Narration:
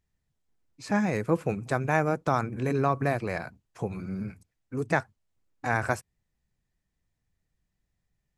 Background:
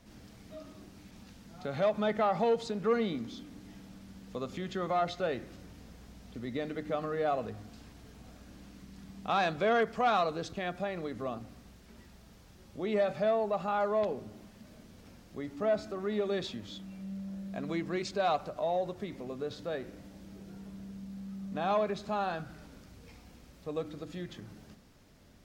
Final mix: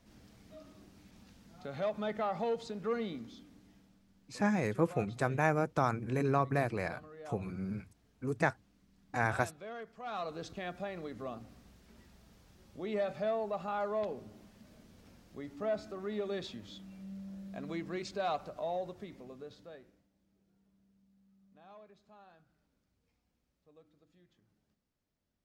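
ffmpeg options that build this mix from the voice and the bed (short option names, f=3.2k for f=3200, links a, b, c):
-filter_complex "[0:a]adelay=3500,volume=-4.5dB[a];[1:a]volume=6.5dB,afade=t=out:st=3.07:d=0.96:silence=0.266073,afade=t=in:st=10.02:d=0.42:silence=0.237137,afade=t=out:st=18.71:d=1.36:silence=0.0891251[b];[a][b]amix=inputs=2:normalize=0"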